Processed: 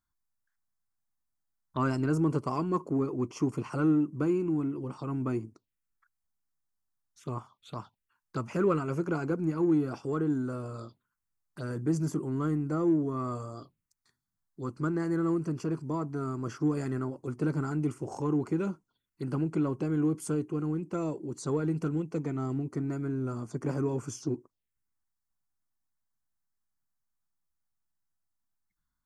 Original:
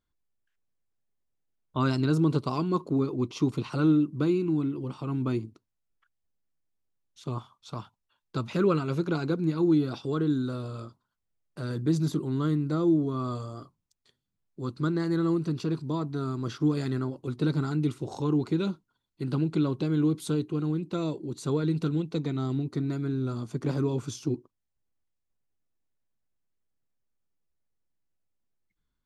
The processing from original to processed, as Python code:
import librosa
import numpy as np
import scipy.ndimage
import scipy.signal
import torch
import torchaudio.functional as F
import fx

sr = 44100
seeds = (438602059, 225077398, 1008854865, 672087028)

p1 = fx.low_shelf(x, sr, hz=350.0, db=-6.0)
p2 = fx.env_phaser(p1, sr, low_hz=470.0, high_hz=3800.0, full_db=-35.5)
p3 = 10.0 ** (-31.5 / 20.0) * np.tanh(p2 / 10.0 ** (-31.5 / 20.0))
y = p2 + (p3 * librosa.db_to_amplitude(-12.0))